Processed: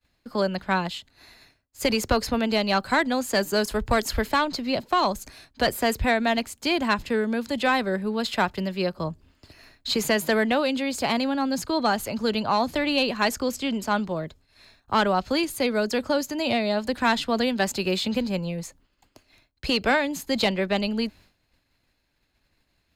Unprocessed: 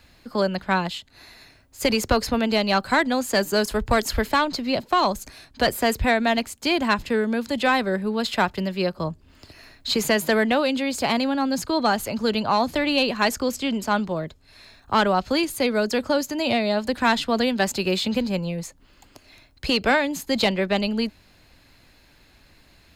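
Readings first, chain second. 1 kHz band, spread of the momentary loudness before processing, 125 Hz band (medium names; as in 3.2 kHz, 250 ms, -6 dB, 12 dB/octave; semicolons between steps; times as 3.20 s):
-2.0 dB, 6 LU, -2.0 dB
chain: expander -44 dBFS; trim -2 dB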